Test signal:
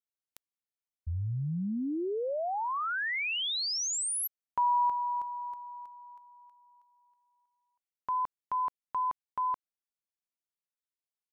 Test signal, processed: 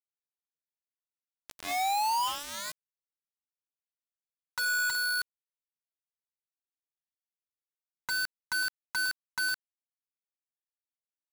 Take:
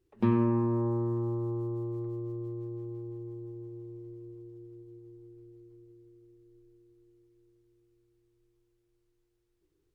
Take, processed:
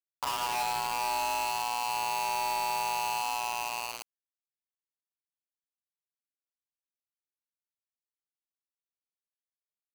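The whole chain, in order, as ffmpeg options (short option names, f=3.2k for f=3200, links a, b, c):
-af "aresample=11025,aeval=exprs='0.2*sin(PI/2*3.16*val(0)/0.2)':c=same,aresample=44100,bandpass=f=450:t=q:w=5.6:csg=0,afreqshift=500,acompressor=threshold=-32dB:ratio=12:attack=0.77:release=444:knee=1:detection=rms,aecho=1:1:373:0.106,acrusher=bits=5:mix=0:aa=0.000001,volume=4.5dB"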